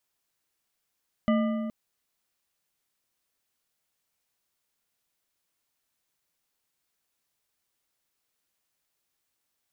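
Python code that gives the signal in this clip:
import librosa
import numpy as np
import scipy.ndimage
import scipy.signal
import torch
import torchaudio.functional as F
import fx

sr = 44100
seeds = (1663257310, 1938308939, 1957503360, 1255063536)

y = fx.strike_metal(sr, length_s=0.42, level_db=-20.0, body='bar', hz=223.0, decay_s=2.29, tilt_db=5.5, modes=5)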